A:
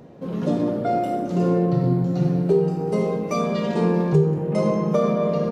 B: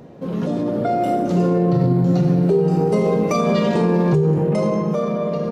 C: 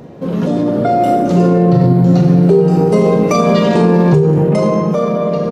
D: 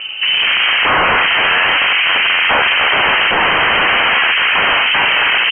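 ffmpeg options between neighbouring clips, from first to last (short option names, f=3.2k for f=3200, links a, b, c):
-af "alimiter=limit=-17.5dB:level=0:latency=1:release=71,dynaudnorm=f=230:g=9:m=5dB,volume=3.5dB"
-filter_complex "[0:a]asplit=2[a][b];[b]adelay=41,volume=-12dB[c];[a][c]amix=inputs=2:normalize=0,volume=6.5dB"
-af "aeval=exprs='0.891*sin(PI/2*6.31*val(0)/0.891)':c=same,crystalizer=i=4.5:c=0,lowpass=f=2.7k:t=q:w=0.5098,lowpass=f=2.7k:t=q:w=0.6013,lowpass=f=2.7k:t=q:w=0.9,lowpass=f=2.7k:t=q:w=2.563,afreqshift=-3200,volume=-10.5dB"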